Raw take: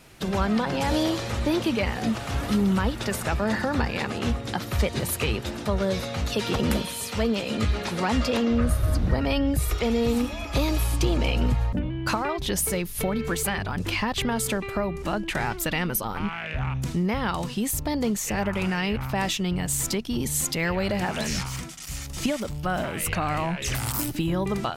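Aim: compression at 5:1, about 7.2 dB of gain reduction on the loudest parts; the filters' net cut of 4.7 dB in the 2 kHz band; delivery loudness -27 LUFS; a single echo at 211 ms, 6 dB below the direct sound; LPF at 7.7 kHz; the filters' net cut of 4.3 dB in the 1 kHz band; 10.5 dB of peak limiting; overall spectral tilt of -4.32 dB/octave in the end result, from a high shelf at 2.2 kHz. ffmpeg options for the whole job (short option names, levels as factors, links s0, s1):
-af "lowpass=7700,equalizer=f=1000:t=o:g=-5,equalizer=f=2000:t=o:g=-8.5,highshelf=f=2200:g=6.5,acompressor=threshold=0.0501:ratio=5,alimiter=level_in=1.19:limit=0.0631:level=0:latency=1,volume=0.841,aecho=1:1:211:0.501,volume=2.11"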